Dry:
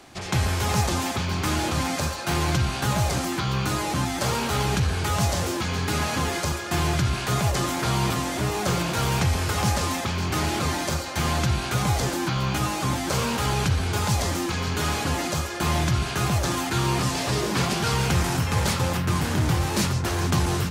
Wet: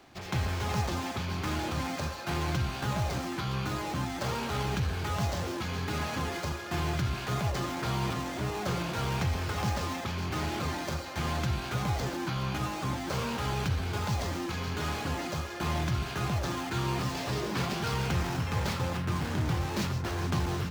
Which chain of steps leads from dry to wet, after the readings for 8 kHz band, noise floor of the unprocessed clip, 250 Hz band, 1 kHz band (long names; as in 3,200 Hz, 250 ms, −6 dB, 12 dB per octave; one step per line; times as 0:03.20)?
−13.0 dB, −30 dBFS, −7.0 dB, −7.5 dB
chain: running median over 5 samples
level −7 dB